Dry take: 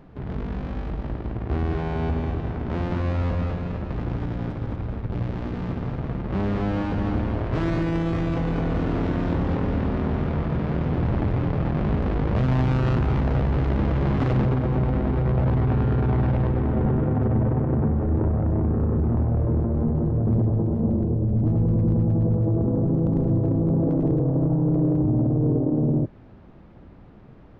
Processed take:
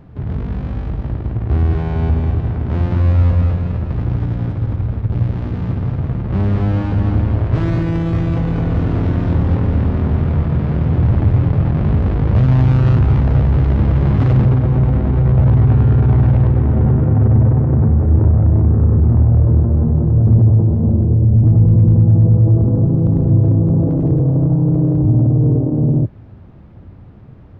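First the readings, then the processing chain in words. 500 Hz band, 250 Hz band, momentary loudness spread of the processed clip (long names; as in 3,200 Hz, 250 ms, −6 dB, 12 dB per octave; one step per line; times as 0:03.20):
+2.5 dB, +5.5 dB, 9 LU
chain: parametric band 95 Hz +11.5 dB 1.4 octaves
level +2 dB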